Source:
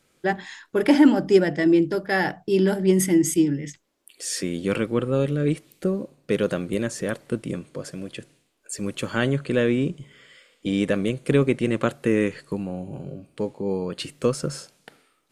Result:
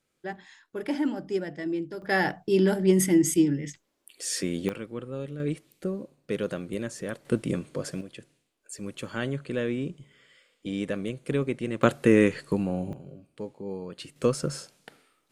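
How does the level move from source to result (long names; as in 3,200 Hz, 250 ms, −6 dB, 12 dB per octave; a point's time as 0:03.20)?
−12.5 dB
from 0:02.02 −2 dB
from 0:04.69 −13 dB
from 0:05.40 −7 dB
from 0:07.25 +1 dB
from 0:08.01 −8 dB
from 0:11.83 +2 dB
from 0:12.93 −9.5 dB
from 0:14.16 −2 dB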